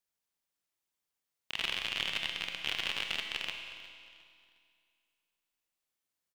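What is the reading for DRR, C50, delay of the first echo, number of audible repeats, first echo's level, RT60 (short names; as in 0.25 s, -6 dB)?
4.0 dB, 5.0 dB, 0.359 s, 2, -17.5 dB, 2.3 s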